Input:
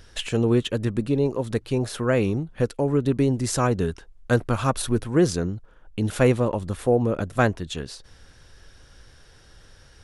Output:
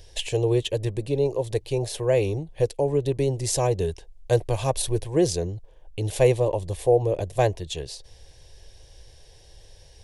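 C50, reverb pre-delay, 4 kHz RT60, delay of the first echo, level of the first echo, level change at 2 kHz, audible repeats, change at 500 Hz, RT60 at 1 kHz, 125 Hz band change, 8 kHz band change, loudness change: no reverb audible, no reverb audible, no reverb audible, no echo audible, no echo audible, −7.0 dB, no echo audible, +1.5 dB, no reverb audible, −1.5 dB, +2.0 dB, −1.0 dB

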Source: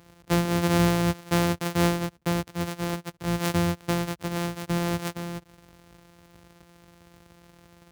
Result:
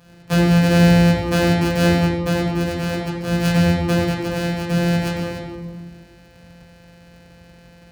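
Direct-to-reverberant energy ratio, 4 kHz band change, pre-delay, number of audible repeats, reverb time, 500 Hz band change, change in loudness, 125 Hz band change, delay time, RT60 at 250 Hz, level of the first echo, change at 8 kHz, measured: −6.5 dB, +7.0 dB, 4 ms, no echo audible, 1.4 s, +8.0 dB, +8.5 dB, +10.0 dB, no echo audible, 2.1 s, no echo audible, +2.0 dB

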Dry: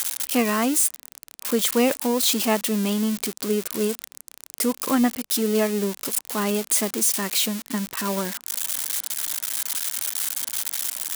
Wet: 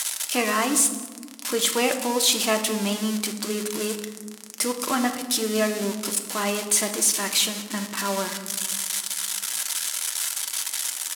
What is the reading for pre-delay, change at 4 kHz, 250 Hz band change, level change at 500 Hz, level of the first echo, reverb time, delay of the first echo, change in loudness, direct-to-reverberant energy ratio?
3 ms, +2.5 dB, −4.0 dB, −1.5 dB, −19.5 dB, 1.5 s, 192 ms, −1.0 dB, 4.5 dB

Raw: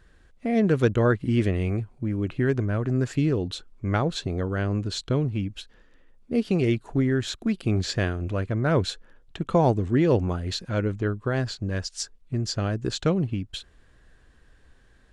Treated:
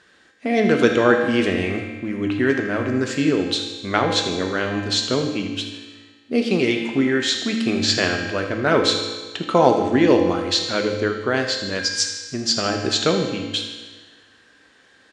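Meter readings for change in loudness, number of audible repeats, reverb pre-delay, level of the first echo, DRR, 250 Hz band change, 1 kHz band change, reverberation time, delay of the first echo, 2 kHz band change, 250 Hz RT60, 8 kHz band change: +5.5 dB, 1, 4 ms, −12.5 dB, 2.0 dB, +4.5 dB, +8.5 dB, 1.5 s, 79 ms, +11.0 dB, 1.4 s, +11.0 dB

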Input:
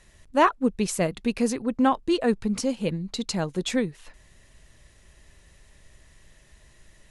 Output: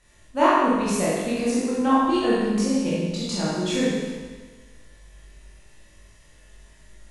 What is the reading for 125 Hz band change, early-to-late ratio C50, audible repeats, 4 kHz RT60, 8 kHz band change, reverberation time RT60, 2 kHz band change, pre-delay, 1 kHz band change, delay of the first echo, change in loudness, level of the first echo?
+2.0 dB, −3.0 dB, no echo audible, 1.4 s, +2.0 dB, 1.4 s, +2.5 dB, 19 ms, +3.5 dB, no echo audible, +3.0 dB, no echo audible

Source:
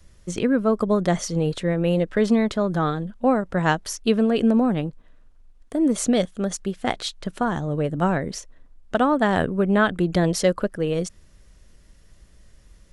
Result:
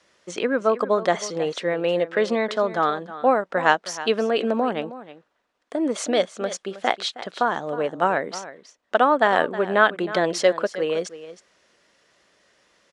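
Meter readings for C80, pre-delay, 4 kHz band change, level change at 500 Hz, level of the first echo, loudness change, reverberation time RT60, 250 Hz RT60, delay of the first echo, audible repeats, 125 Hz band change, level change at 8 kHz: no reverb audible, no reverb audible, +2.5 dB, +2.0 dB, −15.0 dB, 0.0 dB, no reverb audible, no reverb audible, 316 ms, 1, −13.5 dB, −2.5 dB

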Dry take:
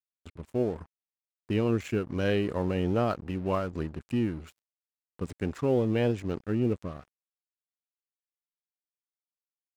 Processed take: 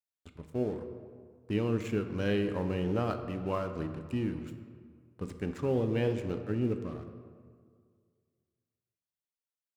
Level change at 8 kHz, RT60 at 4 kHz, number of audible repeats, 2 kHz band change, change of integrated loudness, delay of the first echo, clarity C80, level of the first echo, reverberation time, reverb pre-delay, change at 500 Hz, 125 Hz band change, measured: can't be measured, 1.1 s, no echo audible, −3.5 dB, −3.5 dB, no echo audible, 10.0 dB, no echo audible, 2.0 s, 5 ms, −3.5 dB, −2.5 dB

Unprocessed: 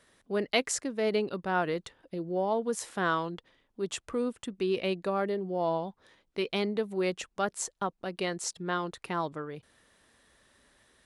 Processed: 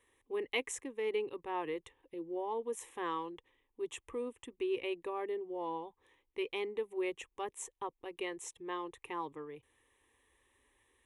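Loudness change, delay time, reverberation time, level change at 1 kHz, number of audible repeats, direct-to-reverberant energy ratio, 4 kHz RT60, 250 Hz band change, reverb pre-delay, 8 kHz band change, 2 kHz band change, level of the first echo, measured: −7.5 dB, no echo audible, no reverb audible, −7.5 dB, no echo audible, no reverb audible, no reverb audible, −9.5 dB, no reverb audible, −10.0 dB, −8.5 dB, no echo audible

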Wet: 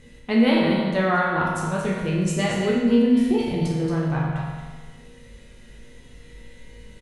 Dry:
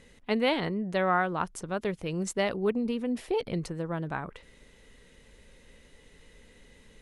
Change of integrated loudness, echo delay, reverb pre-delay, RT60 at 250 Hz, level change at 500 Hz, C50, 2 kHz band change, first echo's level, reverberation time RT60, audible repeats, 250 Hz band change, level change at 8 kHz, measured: +8.5 dB, 227 ms, 8 ms, 1.4 s, +6.0 dB, −0.5 dB, +7.0 dB, −8.0 dB, 1.4 s, 1, +12.0 dB, +5.5 dB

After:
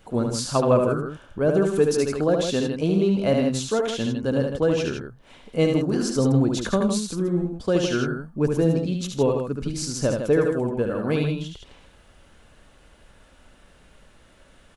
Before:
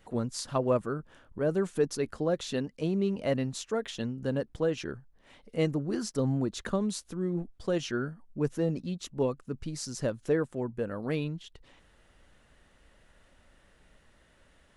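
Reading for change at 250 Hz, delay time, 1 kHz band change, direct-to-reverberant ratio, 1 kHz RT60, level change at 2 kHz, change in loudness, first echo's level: +9.0 dB, 73 ms, +9.0 dB, no reverb audible, no reverb audible, +8.0 dB, +9.0 dB, −4.5 dB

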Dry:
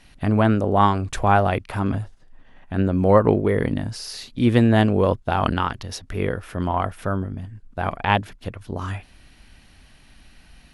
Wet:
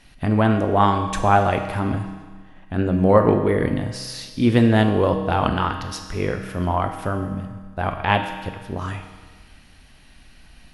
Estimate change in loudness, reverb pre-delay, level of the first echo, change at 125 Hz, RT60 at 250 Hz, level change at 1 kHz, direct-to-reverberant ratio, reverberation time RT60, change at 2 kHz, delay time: +0.5 dB, 6 ms, no echo audible, 0.0 dB, 1.5 s, +1.0 dB, 5.0 dB, 1.5 s, +1.0 dB, no echo audible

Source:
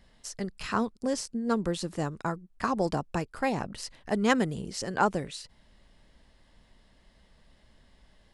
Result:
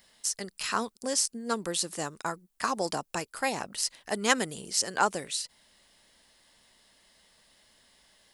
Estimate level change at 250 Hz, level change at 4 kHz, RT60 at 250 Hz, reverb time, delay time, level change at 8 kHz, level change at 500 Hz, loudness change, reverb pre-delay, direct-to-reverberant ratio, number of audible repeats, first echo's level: −7.0 dB, +7.0 dB, no reverb audible, no reverb audible, no echo audible, +11.0 dB, −2.5 dB, 0.0 dB, no reverb audible, no reverb audible, no echo audible, no echo audible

